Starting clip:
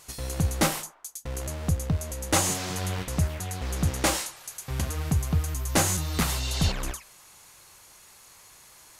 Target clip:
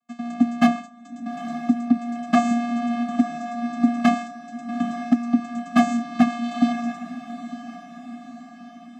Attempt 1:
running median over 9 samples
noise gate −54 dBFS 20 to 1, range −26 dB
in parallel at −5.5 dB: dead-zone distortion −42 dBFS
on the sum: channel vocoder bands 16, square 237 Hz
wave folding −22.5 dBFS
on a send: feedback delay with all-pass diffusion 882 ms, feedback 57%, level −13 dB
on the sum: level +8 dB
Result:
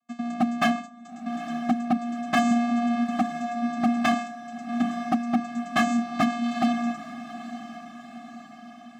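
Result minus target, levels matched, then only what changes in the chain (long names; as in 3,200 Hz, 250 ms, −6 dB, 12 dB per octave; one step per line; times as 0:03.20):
wave folding: distortion +11 dB
change: wave folding −15 dBFS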